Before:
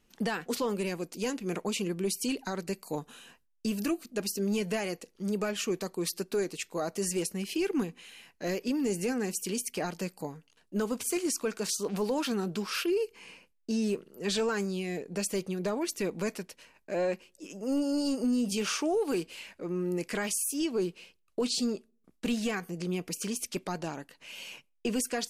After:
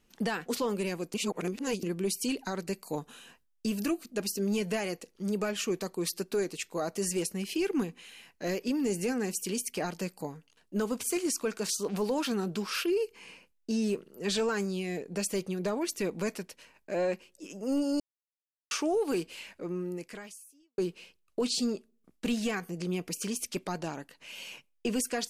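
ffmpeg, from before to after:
-filter_complex "[0:a]asplit=6[a][b][c][d][e][f];[a]atrim=end=1.142[g];[b]atrim=start=1.138:end=1.832,asetpts=PTS-STARTPTS,areverse[h];[c]atrim=start=1.828:end=18,asetpts=PTS-STARTPTS,afade=t=out:st=16.168:d=0.004:c=hsin[i];[d]atrim=start=18:end=18.71,asetpts=PTS-STARTPTS,volume=0[j];[e]atrim=start=18.71:end=20.78,asetpts=PTS-STARTPTS,afade=t=in:d=0.004:c=hsin,afade=t=out:st=0.91:d=1.16:c=qua[k];[f]atrim=start=20.78,asetpts=PTS-STARTPTS,afade=t=in:d=0.004:c=hsin[l];[g][h]acrossfade=d=0.004:c1=hsin:c2=hsin[m];[i][j][k][l]concat=n=4:v=0:a=1[n];[m][n]acrossfade=d=0.004:c1=hsin:c2=hsin"

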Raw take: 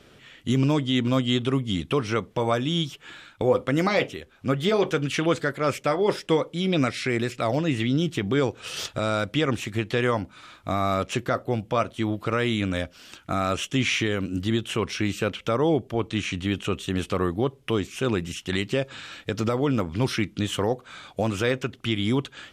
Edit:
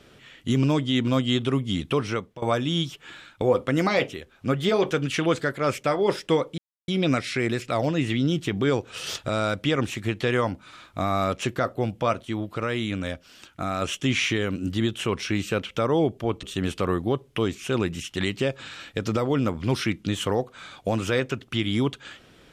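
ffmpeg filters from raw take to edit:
-filter_complex "[0:a]asplit=6[a][b][c][d][e][f];[a]atrim=end=2.42,asetpts=PTS-STARTPTS,afade=t=out:st=2.05:d=0.37:silence=0.11885[g];[b]atrim=start=2.42:end=6.58,asetpts=PTS-STARTPTS,afade=t=in:d=0.004:c=hsin:silence=0.11885,afade=t=out:st=4.156:d=0.004:c=hsin,apad=pad_dur=0.3[h];[c]atrim=start=6.58:end=11.952,asetpts=PTS-STARTPTS,afade=t=in:d=0.004:c=hsin[i];[d]atrim=start=11.948:end=13.522,asetpts=PTS-STARTPTS,volume=-3dB[j];[e]atrim=start=13.518:end=16.132[k];[f]atrim=start=16.748[l];[g][h][i]concat=n=3:v=0:a=1[m];[m][j]acrossfade=d=0.004:c1=hsin:c2=hsin[n];[n][k]acrossfade=d=0.004:c1=hsin:c2=hsin[o];[o][l]acrossfade=d=0.004:c1=hsin:c2=hsin"

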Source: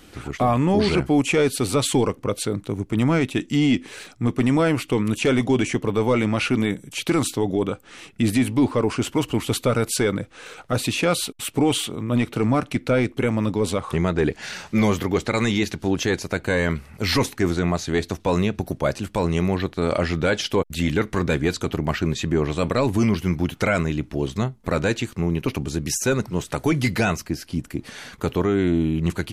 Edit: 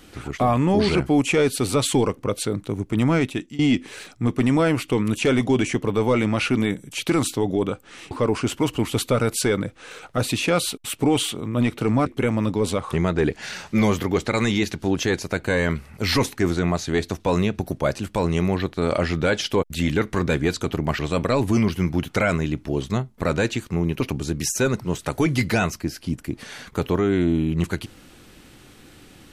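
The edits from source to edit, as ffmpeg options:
-filter_complex "[0:a]asplit=5[a][b][c][d][e];[a]atrim=end=3.59,asetpts=PTS-STARTPTS,afade=t=out:st=3.24:d=0.35:silence=0.0841395[f];[b]atrim=start=3.59:end=8.112,asetpts=PTS-STARTPTS,afade=t=in:d=0.004:c=hsin:silence=0.0841395[g];[c]atrim=start=8.658:end=12.612[h];[d]atrim=start=13.058:end=21.992[i];[e]atrim=start=22.448[j];[f][g]concat=n=2:v=0:a=1[k];[k][h]acrossfade=d=0.004:c1=hsin:c2=hsin[l];[l][i]acrossfade=d=0.004:c1=hsin:c2=hsin[m];[m][j]acrossfade=d=0.004:c1=hsin:c2=hsin"

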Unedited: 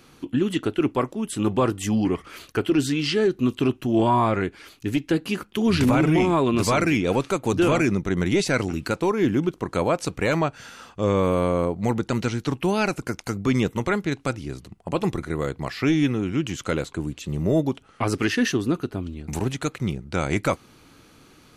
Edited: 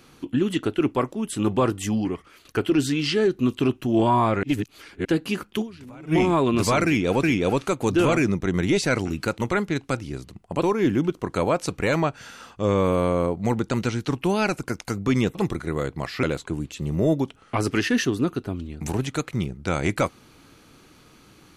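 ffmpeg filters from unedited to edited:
-filter_complex "[0:a]asplit=11[a][b][c][d][e][f][g][h][i][j][k];[a]atrim=end=2.45,asetpts=PTS-STARTPTS,afade=t=out:st=1.79:d=0.66:silence=0.177828[l];[b]atrim=start=2.45:end=4.432,asetpts=PTS-STARTPTS,afade=t=in:d=0.004:c=hsin:silence=0.177828[m];[c]atrim=start=4.428:end=5.052,asetpts=PTS-STARTPTS,areverse[n];[d]atrim=start=5.048:end=5.85,asetpts=PTS-STARTPTS,afade=t=out:st=0.562:d=0.24:c=exp:silence=0.0668344[o];[e]atrim=start=5.85:end=5.89,asetpts=PTS-STARTPTS,volume=-23.5dB[p];[f]atrim=start=5.89:end=7.232,asetpts=PTS-STARTPTS,afade=t=in:d=0.24:c=exp:silence=0.0668344[q];[g]atrim=start=6.858:end=9.012[r];[h]atrim=start=13.738:end=14.982[s];[i]atrim=start=9.008:end=13.742[t];[j]atrim=start=14.978:end=15.862[u];[k]atrim=start=16.698[v];[l][m]concat=n=2:v=0:a=1[w];[w][n]acrossfade=d=0.004:c1=hsin:c2=hsin[x];[o][p][q]concat=n=3:v=0:a=1[y];[x][y]acrossfade=d=0.004:c1=hsin:c2=hsin[z];[z][r]acrossfade=d=0.004:c1=hsin:c2=hsin[aa];[aa][s]acrossfade=d=0.004:c1=hsin:c2=hsin[ab];[ab][t]acrossfade=d=0.004:c1=hsin:c2=hsin[ac];[ac][u]acrossfade=d=0.004:c1=hsin:c2=hsin[ad];[ad][v]acrossfade=d=0.004:c1=hsin:c2=hsin"

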